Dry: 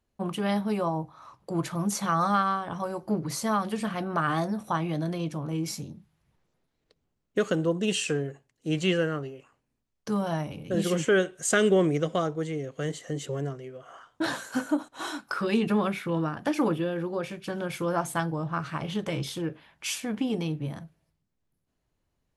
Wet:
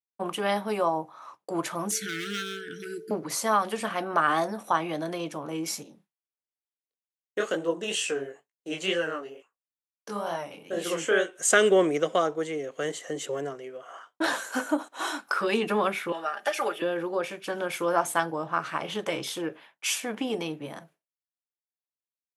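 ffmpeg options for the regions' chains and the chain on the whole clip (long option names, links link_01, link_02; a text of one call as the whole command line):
ffmpeg -i in.wav -filter_complex "[0:a]asettb=1/sr,asplit=3[link_01][link_02][link_03];[link_01]atrim=end=1.914[link_04];[link_02]atrim=start=1.91:end=3.11,asetpts=PTS-STARTPTS,afade=type=in:duration=0.004:curve=qsin,afade=type=out:start_time=1.196:duration=0.004:curve=qsin,asoftclip=type=hard:threshold=-24dB,aeval=exprs='val(0)+0.00708*sin(2*PI*440*n/s)':channel_layout=same,asuperstop=centerf=800:order=20:qfactor=0.82[link_05];[link_03]atrim=start=3.106[link_06];[link_04][link_05]acrossfade=duration=0.004:curve1=hsin:curve2=qsin[link_07];[link_07][link_06]acrossfade=duration=0.004:curve1=qsin:curve2=hsin,asettb=1/sr,asplit=3[link_08][link_09][link_10];[link_08]atrim=end=5.834[link_11];[link_09]atrim=start=5.83:end=11.36,asetpts=PTS-STARTPTS,afade=type=in:duration=0.004:curve=qsin,afade=type=out:start_time=5.526:duration=0.004:curve=qsin,lowshelf=frequency=200:gain=-5,flanger=delay=17:depth=7.8:speed=2.2[link_12];[link_10]atrim=start=11.356[link_13];[link_11][link_12]acrossfade=duration=0.004:curve1=hsin:curve2=qsin[link_14];[link_14][link_13]acrossfade=duration=0.004:curve1=qsin:curve2=hsin,asettb=1/sr,asplit=3[link_15][link_16][link_17];[link_15]atrim=end=16.124[link_18];[link_16]atrim=start=16.12:end=16.82,asetpts=PTS-STARTPTS,afade=type=in:duration=0.004:curve=qsin,afade=type=out:start_time=0.696:duration=0.004:curve=qsin,highpass=610,equalizer=frequency=1000:width=6:gain=-12,aecho=1:1:5:0.71,atrim=end_sample=30870[link_19];[link_17]atrim=start=16.816[link_20];[link_18][link_19]acrossfade=duration=0.004:curve1=hsin:curve2=qsin[link_21];[link_21][link_20]acrossfade=duration=0.004:curve1=qsin:curve2=hsin,agate=range=-33dB:threshold=-47dB:ratio=3:detection=peak,highpass=390,equalizer=frequency=4400:width=2.5:gain=-3.5,volume=4.5dB" out.wav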